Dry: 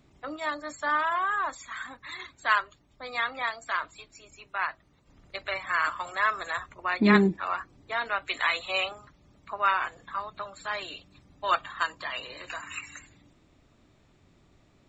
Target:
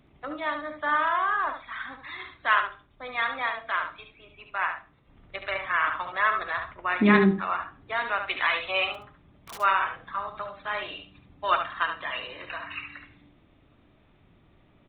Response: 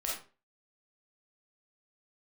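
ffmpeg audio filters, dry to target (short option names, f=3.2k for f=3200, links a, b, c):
-filter_complex "[0:a]asplit=2[a][b];[1:a]atrim=start_sample=2205[c];[b][c]afir=irnorm=-1:irlink=0,volume=-14.5dB[d];[a][d]amix=inputs=2:normalize=0,aresample=8000,aresample=44100,asplit=3[e][f][g];[e]afade=t=out:st=8.94:d=0.02[h];[f]aeval=exprs='(mod(56.2*val(0)+1,2)-1)/56.2':c=same,afade=t=in:st=8.94:d=0.02,afade=t=out:st=9.57:d=0.02[i];[g]afade=t=in:st=9.57:d=0.02[j];[h][i][j]amix=inputs=3:normalize=0,aecho=1:1:72:0.422"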